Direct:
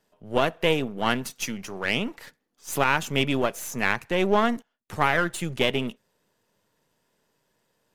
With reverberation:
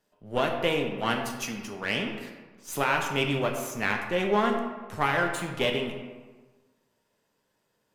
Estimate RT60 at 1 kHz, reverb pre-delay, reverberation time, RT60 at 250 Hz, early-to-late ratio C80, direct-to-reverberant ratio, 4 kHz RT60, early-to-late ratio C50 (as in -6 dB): 1.4 s, 8 ms, 1.4 s, 1.3 s, 7.0 dB, 2.0 dB, 0.80 s, 5.5 dB